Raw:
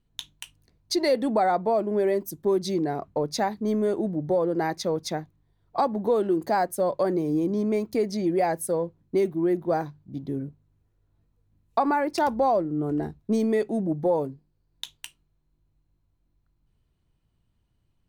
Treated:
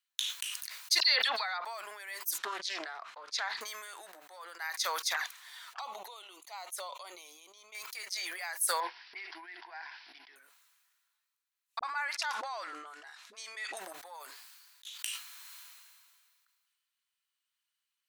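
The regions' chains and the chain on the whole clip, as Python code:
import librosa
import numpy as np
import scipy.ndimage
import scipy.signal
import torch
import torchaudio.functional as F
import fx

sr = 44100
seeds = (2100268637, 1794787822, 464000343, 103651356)

y = fx.chain(x, sr, fx.high_shelf_res(hz=6200.0, db=-12.5, q=3.0),
    fx.dispersion(late='lows', ms=42.0, hz=2900.0), at=(1.0, 1.65))
y = fx.chain(y, sr, fx.lowpass(hz=4600.0, slope=12),
    fx.low_shelf(hz=350.0, db=11.5),
    fx.doppler_dist(depth_ms=0.17), at=(2.38, 3.61))
y = fx.chain(y, sr, fx.high_shelf(hz=11000.0, db=-9.5),
    fx.env_flanger(rest_ms=11.9, full_db=-24.5), at=(5.14, 7.75))
y = fx.chain(y, sr, fx.fixed_phaser(hz=820.0, stages=8),
    fx.resample_bad(factor=4, down='none', up='filtered'), at=(8.8, 10.36))
y = fx.chain(y, sr, fx.lowpass(hz=6800.0, slope=12),
    fx.dispersion(late='highs', ms=42.0, hz=400.0), at=(11.79, 13.77))
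y = fx.chain(y, sr, fx.highpass(hz=370.0, slope=12),
    fx.over_compress(threshold_db=-49.0, ratio=-1.0), at=(14.3, 14.98))
y = scipy.signal.sosfilt(scipy.signal.butter(4, 1300.0, 'highpass', fs=sr, output='sos'), y)
y = fx.high_shelf(y, sr, hz=3700.0, db=6.5)
y = fx.sustainer(y, sr, db_per_s=28.0)
y = y * 10.0 ** (-3.0 / 20.0)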